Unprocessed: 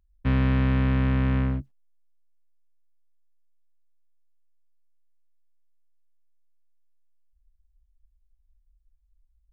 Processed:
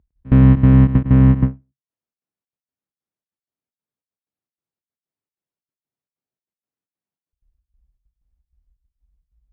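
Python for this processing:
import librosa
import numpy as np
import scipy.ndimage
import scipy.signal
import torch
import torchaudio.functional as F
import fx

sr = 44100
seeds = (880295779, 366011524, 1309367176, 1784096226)

y = scipy.signal.sosfilt(scipy.signal.butter(2, 150.0, 'highpass', fs=sr, output='sos'), x)
y = fx.tilt_eq(y, sr, slope=-4.5)
y = fx.step_gate(y, sr, bpm=190, pattern='x.x.xxx.xx', floor_db=-24.0, edge_ms=4.5)
y = y + 10.0 ** (-12.5 / 20.0) * np.pad(y, (int(106 * sr / 1000.0), 0))[:len(y)]
y = fx.end_taper(y, sr, db_per_s=260.0)
y = F.gain(torch.from_numpy(y), 5.0).numpy()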